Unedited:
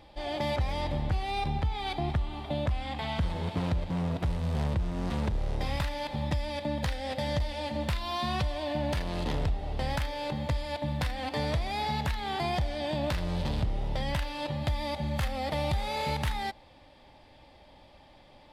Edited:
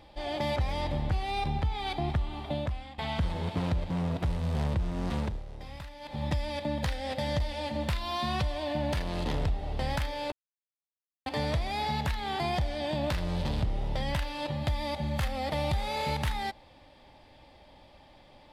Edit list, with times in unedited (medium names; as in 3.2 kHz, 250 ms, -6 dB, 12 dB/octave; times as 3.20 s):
2.50–2.98 s: fade out, to -15.5 dB
5.18–6.26 s: dip -12 dB, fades 0.26 s
10.32–11.26 s: mute